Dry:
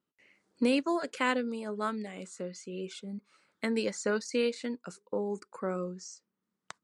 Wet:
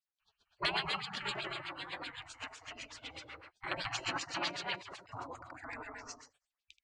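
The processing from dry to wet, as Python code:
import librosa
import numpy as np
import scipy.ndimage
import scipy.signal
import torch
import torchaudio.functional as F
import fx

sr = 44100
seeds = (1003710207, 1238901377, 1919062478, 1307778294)

y = fx.echo_multitap(x, sr, ms=(79, 215, 216, 309), db=(-8.5, -7.0, -8.5, -12.0))
y = fx.filter_lfo_lowpass(y, sr, shape='sine', hz=7.9, low_hz=460.0, high_hz=3000.0, q=1.6)
y = fx.spec_gate(y, sr, threshold_db=-30, keep='weak')
y = y * 10.0 ** (15.0 / 20.0)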